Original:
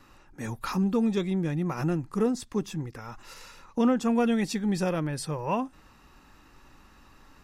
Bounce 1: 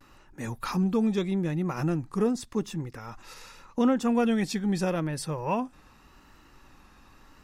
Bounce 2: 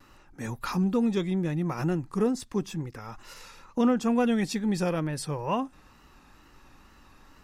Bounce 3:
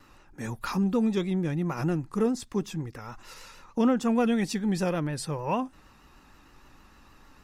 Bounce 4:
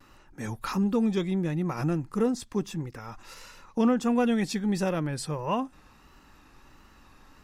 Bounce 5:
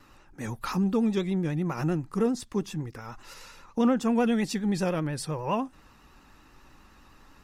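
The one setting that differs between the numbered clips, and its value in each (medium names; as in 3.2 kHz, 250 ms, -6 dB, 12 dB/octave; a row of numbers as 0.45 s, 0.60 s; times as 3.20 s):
vibrato, rate: 0.83 Hz, 2.2 Hz, 6.5 Hz, 1.5 Hz, 10 Hz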